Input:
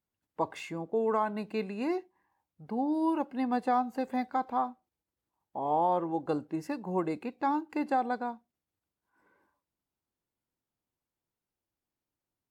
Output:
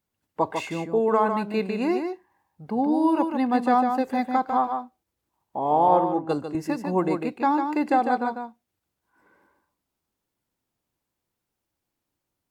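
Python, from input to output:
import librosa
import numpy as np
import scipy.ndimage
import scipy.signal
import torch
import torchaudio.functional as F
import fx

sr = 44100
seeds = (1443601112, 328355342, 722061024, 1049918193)

y = x + 10.0 ** (-6.0 / 20.0) * np.pad(x, (int(149 * sr / 1000.0), 0))[:len(x)]
y = fx.band_widen(y, sr, depth_pct=100, at=(5.88, 6.55))
y = y * 10.0 ** (7.0 / 20.0)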